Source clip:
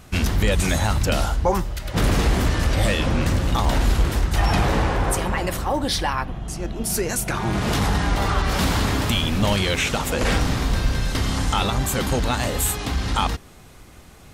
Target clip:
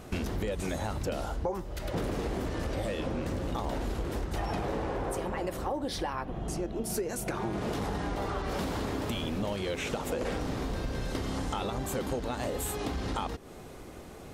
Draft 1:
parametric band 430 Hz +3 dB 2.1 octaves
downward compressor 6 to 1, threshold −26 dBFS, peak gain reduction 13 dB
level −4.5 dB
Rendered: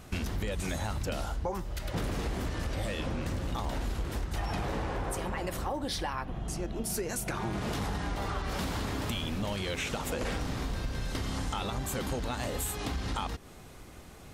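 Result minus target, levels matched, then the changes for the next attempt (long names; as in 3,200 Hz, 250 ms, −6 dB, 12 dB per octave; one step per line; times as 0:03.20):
500 Hz band −3.5 dB
change: parametric band 430 Hz +11 dB 2.1 octaves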